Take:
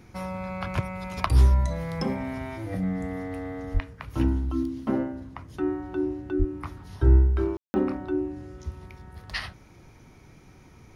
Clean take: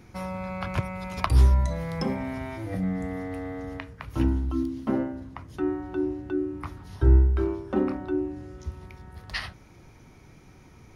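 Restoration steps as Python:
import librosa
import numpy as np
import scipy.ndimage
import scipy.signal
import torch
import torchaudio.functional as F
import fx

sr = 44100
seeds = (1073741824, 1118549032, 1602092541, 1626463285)

y = fx.fix_deplosive(x, sr, at_s=(3.73, 6.38))
y = fx.fix_ambience(y, sr, seeds[0], print_start_s=10.11, print_end_s=10.61, start_s=7.57, end_s=7.74)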